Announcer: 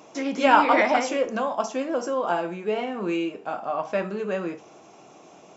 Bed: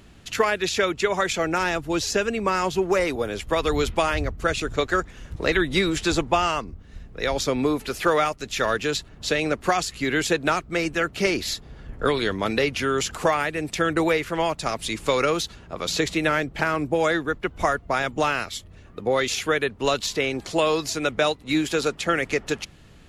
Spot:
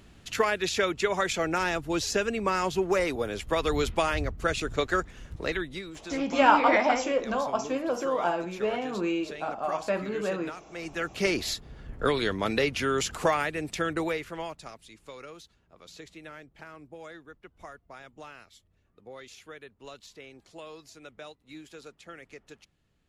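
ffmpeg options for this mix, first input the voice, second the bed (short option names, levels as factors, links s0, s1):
-filter_complex "[0:a]adelay=5950,volume=0.75[s0];[1:a]volume=3.55,afade=t=out:st=5.19:d=0.63:silence=0.188365,afade=t=in:st=10.71:d=0.59:silence=0.177828,afade=t=out:st=13.34:d=1.5:silence=0.105925[s1];[s0][s1]amix=inputs=2:normalize=0"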